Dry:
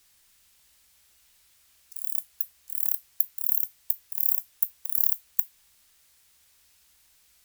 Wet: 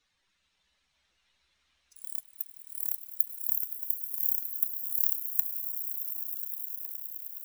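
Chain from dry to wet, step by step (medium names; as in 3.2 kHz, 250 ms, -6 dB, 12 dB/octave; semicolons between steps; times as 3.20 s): expander on every frequency bin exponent 2; echo with a slow build-up 104 ms, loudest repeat 8, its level -13.5 dB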